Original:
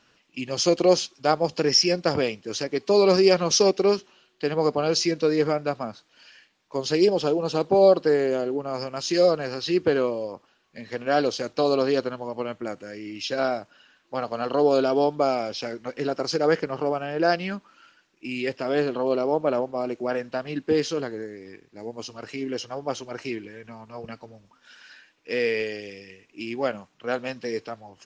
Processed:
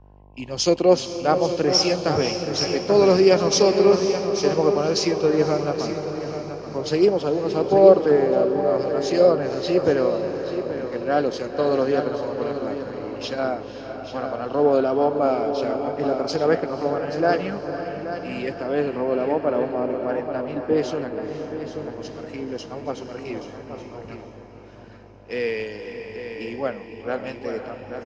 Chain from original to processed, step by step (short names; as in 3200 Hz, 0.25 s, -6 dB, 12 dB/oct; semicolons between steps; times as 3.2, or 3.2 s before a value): high shelf 2900 Hz -10 dB; diffused feedback echo 0.512 s, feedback 64%, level -7.5 dB; buzz 50 Hz, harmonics 21, -46 dBFS -2 dB/oct; echo 0.83 s -8 dB; in parallel at -1 dB: compressor, threshold -29 dBFS, peak gain reduction 16.5 dB; on the sum: three-band expander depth 70%; gain -1 dB